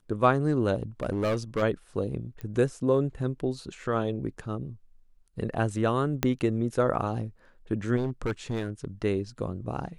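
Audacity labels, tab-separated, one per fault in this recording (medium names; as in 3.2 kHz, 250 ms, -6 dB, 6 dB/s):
0.740000	1.630000	clipped -23 dBFS
2.410000	2.410000	pop -25 dBFS
6.230000	6.230000	pop -9 dBFS
7.960000	8.850000	clipped -24 dBFS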